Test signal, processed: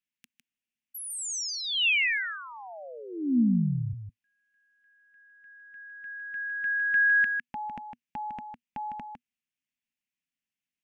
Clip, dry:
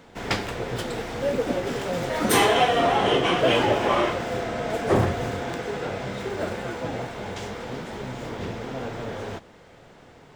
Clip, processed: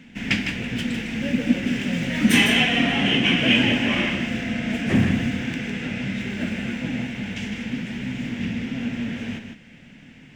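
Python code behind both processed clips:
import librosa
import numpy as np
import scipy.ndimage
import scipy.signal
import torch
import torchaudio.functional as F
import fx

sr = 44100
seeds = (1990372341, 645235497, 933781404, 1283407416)

p1 = fx.curve_eq(x, sr, hz=(110.0, 240.0, 390.0, 580.0, 1200.0, 1700.0, 2700.0, 4100.0, 5900.0, 11000.0), db=(0, 12, -10, -10, -12, 3, 10, -4, 0, -6))
y = p1 + fx.echo_single(p1, sr, ms=155, db=-7.0, dry=0)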